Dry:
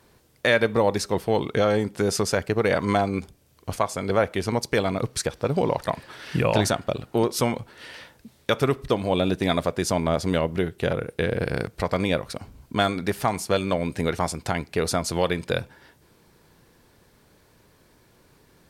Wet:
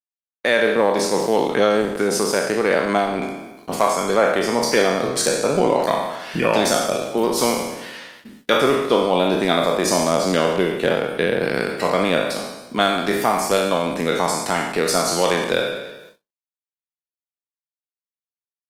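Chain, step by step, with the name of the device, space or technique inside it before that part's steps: spectral trails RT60 1.08 s; video call (HPF 180 Hz 24 dB/oct; AGC gain up to 5 dB; gate -44 dBFS, range -59 dB; Opus 20 kbps 48000 Hz)

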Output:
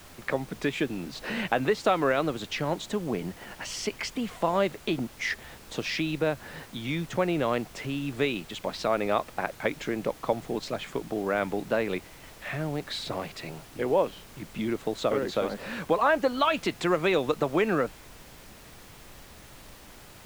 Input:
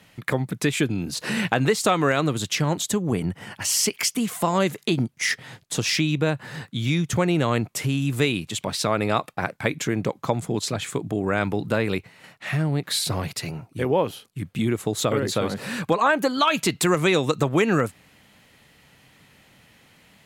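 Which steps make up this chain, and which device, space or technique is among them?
horn gramophone (BPF 200–3800 Hz; bell 610 Hz +4.5 dB; wow and flutter; pink noise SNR 19 dB); gain -5 dB

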